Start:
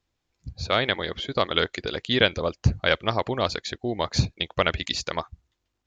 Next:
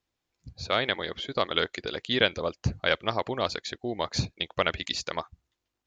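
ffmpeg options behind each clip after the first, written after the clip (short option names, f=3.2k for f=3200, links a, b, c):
-af "lowshelf=f=120:g=-8,volume=-3dB"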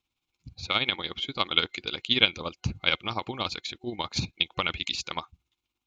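-af "tremolo=f=17:d=0.58,superequalizer=7b=0.501:8b=0.398:11b=0.447:12b=2:13b=1.78,volume=1.5dB"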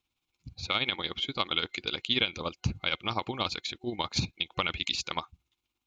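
-af "alimiter=limit=-12dB:level=0:latency=1:release=112"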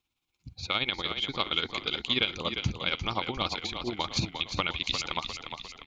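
-filter_complex "[0:a]asplit=7[a][b][c][d][e][f][g];[b]adelay=352,afreqshift=-34,volume=-7.5dB[h];[c]adelay=704,afreqshift=-68,volume=-13.3dB[i];[d]adelay=1056,afreqshift=-102,volume=-19.2dB[j];[e]adelay=1408,afreqshift=-136,volume=-25dB[k];[f]adelay=1760,afreqshift=-170,volume=-30.9dB[l];[g]adelay=2112,afreqshift=-204,volume=-36.7dB[m];[a][h][i][j][k][l][m]amix=inputs=7:normalize=0"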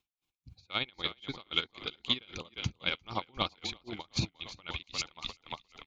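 -af "aeval=exprs='val(0)*pow(10,-30*(0.5-0.5*cos(2*PI*3.8*n/s))/20)':c=same"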